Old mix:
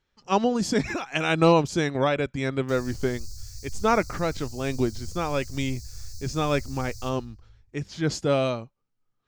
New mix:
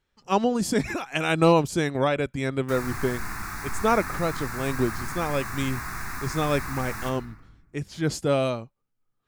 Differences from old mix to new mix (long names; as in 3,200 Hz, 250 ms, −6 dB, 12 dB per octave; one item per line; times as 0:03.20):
background: remove Chebyshev band-stop filter 110–4,400 Hz, order 5
master: add high shelf with overshoot 7,900 Hz +8.5 dB, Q 1.5